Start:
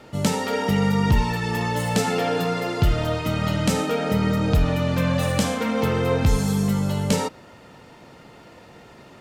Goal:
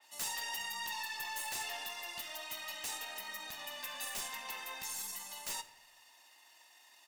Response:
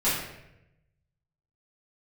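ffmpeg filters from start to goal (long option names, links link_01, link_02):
-filter_complex "[0:a]highpass=frequency=310:width=0.5412,highpass=frequency=310:width=1.3066,aderivative,aecho=1:1:1.1:0.76,atempo=1.3,aeval=exprs='(tanh(6.31*val(0)+0.3)-tanh(0.3))/6.31':channel_layout=same,aeval=exprs='0.0355*(abs(mod(val(0)/0.0355+3,4)-2)-1)':channel_layout=same,asplit=2[link_01][link_02];[1:a]atrim=start_sample=2205[link_03];[link_02][link_03]afir=irnorm=-1:irlink=0,volume=-22.5dB[link_04];[link_01][link_04]amix=inputs=2:normalize=0,adynamicequalizer=threshold=0.00447:dfrequency=3600:dqfactor=0.7:tfrequency=3600:tqfactor=0.7:attack=5:release=100:ratio=0.375:range=1.5:mode=cutabove:tftype=highshelf,volume=-3dB"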